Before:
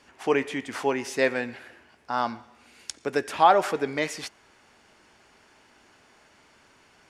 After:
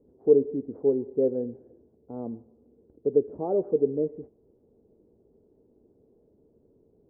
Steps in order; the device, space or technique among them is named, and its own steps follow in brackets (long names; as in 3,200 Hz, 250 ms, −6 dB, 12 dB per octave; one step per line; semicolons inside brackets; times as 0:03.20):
under water (low-pass filter 430 Hz 24 dB per octave; parametric band 460 Hz +9.5 dB 0.42 octaves)
level +1 dB